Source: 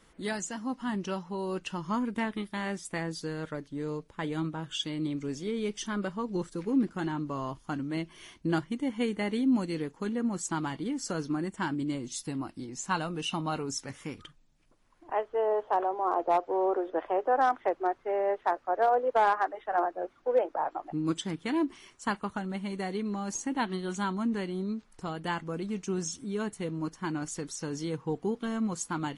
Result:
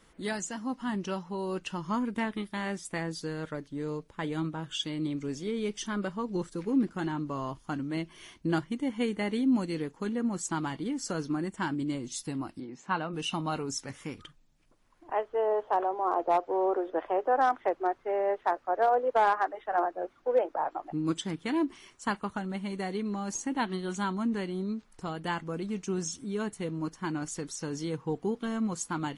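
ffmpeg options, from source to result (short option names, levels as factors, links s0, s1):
-filter_complex "[0:a]asplit=3[s0][s1][s2];[s0]afade=t=out:st=12.59:d=0.02[s3];[s1]highpass=160,lowpass=2600,afade=t=in:st=12.59:d=0.02,afade=t=out:st=13.12:d=0.02[s4];[s2]afade=t=in:st=13.12:d=0.02[s5];[s3][s4][s5]amix=inputs=3:normalize=0"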